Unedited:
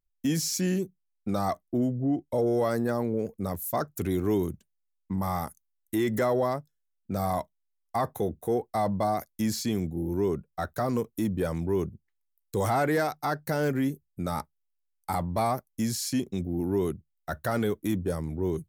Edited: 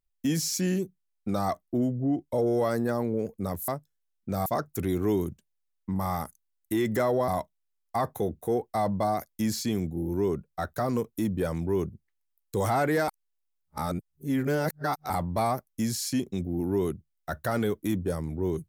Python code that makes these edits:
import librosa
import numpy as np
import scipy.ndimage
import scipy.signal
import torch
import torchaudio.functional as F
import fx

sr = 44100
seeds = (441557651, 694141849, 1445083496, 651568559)

y = fx.edit(x, sr, fx.move(start_s=6.5, length_s=0.78, to_s=3.68),
    fx.reverse_span(start_s=13.08, length_s=2.02), tone=tone)